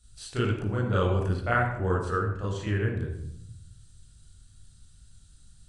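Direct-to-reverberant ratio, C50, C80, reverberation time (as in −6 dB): −6.0 dB, 3.0 dB, 5.0 dB, 0.70 s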